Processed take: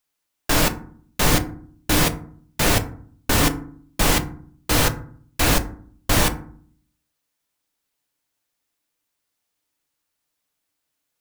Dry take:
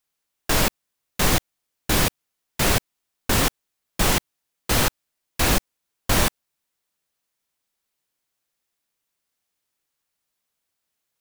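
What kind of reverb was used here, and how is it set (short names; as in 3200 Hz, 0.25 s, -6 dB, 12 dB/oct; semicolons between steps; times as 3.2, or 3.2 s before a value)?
FDN reverb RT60 0.51 s, low-frequency decay 1.55×, high-frequency decay 0.45×, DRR 7 dB; gain +1 dB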